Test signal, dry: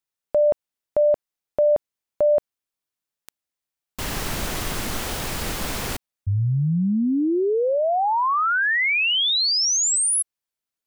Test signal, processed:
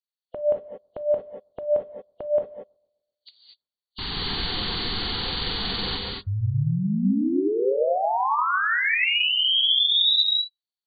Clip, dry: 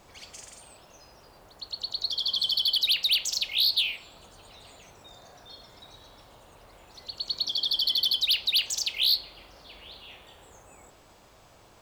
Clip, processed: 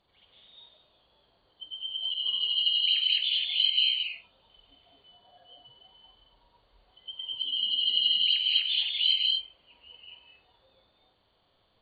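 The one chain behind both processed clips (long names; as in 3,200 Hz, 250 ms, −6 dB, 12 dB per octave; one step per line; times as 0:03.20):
hearing-aid frequency compression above 2,800 Hz 4 to 1
on a send: bucket-brigade delay 127 ms, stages 1,024, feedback 48%, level −22 dB
on the sum: reverb whose tail is shaped and stops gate 260 ms rising, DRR 0 dB
noise reduction from a noise print of the clip's start 13 dB
level −5 dB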